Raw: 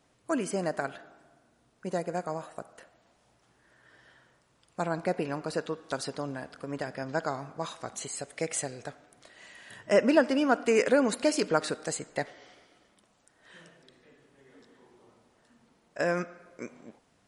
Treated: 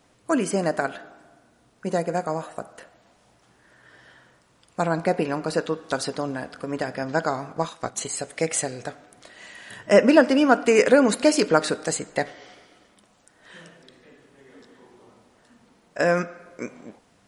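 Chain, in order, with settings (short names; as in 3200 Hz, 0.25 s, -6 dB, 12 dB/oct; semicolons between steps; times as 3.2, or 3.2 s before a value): 7.51–8.18 transient shaper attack +3 dB, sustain -8 dB; reverb RT60 0.20 s, pre-delay 4 ms, DRR 15.5 dB; gain +7 dB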